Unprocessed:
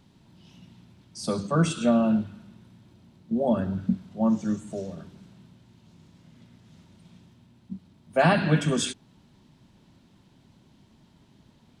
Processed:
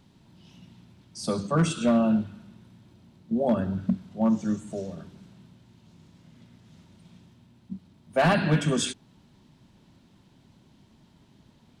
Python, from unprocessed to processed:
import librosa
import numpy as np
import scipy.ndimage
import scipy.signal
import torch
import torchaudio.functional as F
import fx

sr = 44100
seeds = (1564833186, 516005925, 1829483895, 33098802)

y = np.clip(10.0 ** (15.5 / 20.0) * x, -1.0, 1.0) / 10.0 ** (15.5 / 20.0)